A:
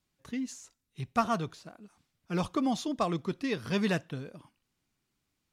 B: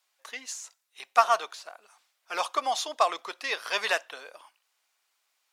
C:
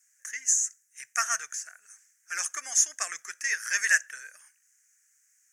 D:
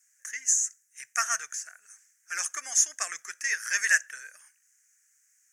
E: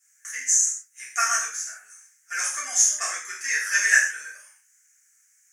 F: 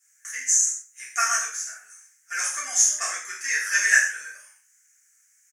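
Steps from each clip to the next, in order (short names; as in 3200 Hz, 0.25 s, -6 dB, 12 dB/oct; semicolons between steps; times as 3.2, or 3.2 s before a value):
HPF 640 Hz 24 dB/oct; gain +8.5 dB
EQ curve 120 Hz 0 dB, 230 Hz -23 dB, 1000 Hz -28 dB, 1700 Hz +4 dB, 3900 Hz -27 dB, 6300 Hz +12 dB, 13000 Hz -1 dB; gain +5.5 dB
nothing audible
non-linear reverb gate 0.18 s falling, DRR -7.5 dB; gain -3 dB
echo 0.138 s -24 dB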